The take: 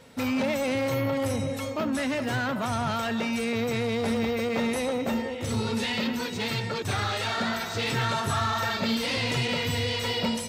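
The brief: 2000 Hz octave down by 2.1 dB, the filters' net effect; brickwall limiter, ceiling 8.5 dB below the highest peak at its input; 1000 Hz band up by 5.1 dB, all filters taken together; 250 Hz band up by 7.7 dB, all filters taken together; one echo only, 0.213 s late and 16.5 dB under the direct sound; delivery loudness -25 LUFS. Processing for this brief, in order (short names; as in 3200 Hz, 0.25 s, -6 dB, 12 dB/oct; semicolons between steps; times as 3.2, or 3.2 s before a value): bell 250 Hz +8 dB; bell 1000 Hz +7.5 dB; bell 2000 Hz -5 dB; limiter -19.5 dBFS; echo 0.213 s -16.5 dB; gain +2.5 dB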